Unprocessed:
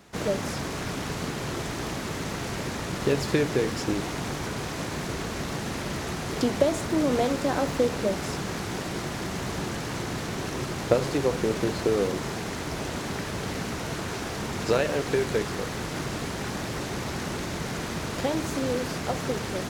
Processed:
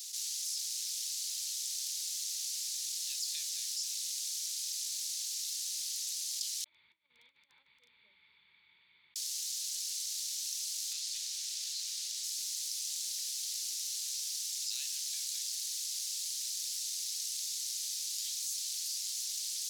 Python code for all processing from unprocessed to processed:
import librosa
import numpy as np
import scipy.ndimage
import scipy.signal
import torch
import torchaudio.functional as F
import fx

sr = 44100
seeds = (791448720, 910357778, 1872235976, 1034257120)

y = fx.chain(x, sr, fx.formant_cascade(vowel='u'),
    fx.hum_notches(base_hz=50, count=9),
    fx.over_compress(threshold_db=-35.0, ratio=-1.0), at=(6.64, 9.16))
y = fx.chain(y, sr, fx.peak_eq(hz=13000.0, db=-5.5, octaves=1.6),
    fx.doppler_dist(depth_ms=0.15), at=(10.93, 12.24))
y = scipy.signal.sosfilt(scipy.signal.cheby2(4, 80, 790.0, 'highpass', fs=sr, output='sos'), y)
y = fx.env_flatten(y, sr, amount_pct=70)